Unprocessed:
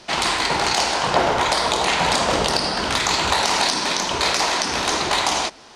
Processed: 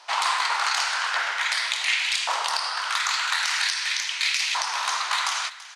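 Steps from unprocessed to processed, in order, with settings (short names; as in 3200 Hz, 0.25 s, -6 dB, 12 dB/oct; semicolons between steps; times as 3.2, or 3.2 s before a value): echo 0.334 s -16.5 dB; LFO high-pass saw up 0.44 Hz 920–2500 Hz; HPF 360 Hz 6 dB/oct, from 1.98 s 960 Hz; gain -5.5 dB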